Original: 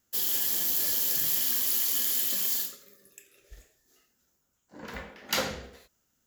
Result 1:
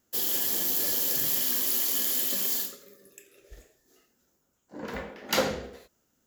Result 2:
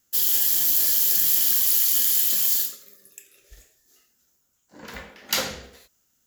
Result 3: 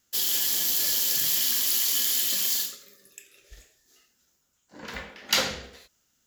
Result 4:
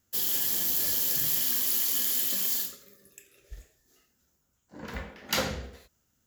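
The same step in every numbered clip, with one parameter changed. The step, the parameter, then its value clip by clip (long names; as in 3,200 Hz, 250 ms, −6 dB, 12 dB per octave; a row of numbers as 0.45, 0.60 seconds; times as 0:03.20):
parametric band, centre frequency: 390, 15,000, 4,100, 76 Hertz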